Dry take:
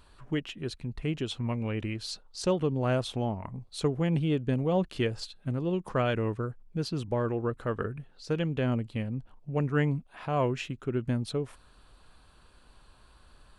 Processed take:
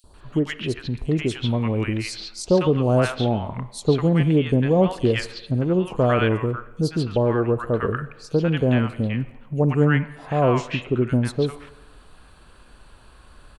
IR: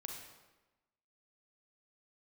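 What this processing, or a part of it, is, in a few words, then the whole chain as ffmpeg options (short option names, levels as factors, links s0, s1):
filtered reverb send: -filter_complex "[0:a]asettb=1/sr,asplit=3[s0][s1][s2];[s0]atrim=end=10.514[s3];[s1]atrim=start=10.51:end=11.11,asetpts=PTS-STARTPTS,afade=t=in:d=0.004:c=qsin,afade=t=out:st=0.596:d=0.004:c=qsin,lowpass=f=8700:w=0.5412,lowpass=f=8700:w=1.3066[s4];[s2]atrim=start=11.106[s5];[s3][s4]acrossfade=d=0.004:c1=hsin:c2=qsin[s6];[s6][s5]acrossfade=d=0.004:c1=qsin:c2=hsin,acrossover=split=940|4400[s7][s8][s9];[s7]adelay=40[s10];[s8]adelay=140[s11];[s10][s11][s9]amix=inputs=3:normalize=0,asplit=2[s12][s13];[s13]highpass=f=420:p=1,lowpass=3200[s14];[1:a]atrim=start_sample=2205[s15];[s14][s15]afir=irnorm=-1:irlink=0,volume=0.501[s16];[s12][s16]amix=inputs=2:normalize=0,volume=2.66"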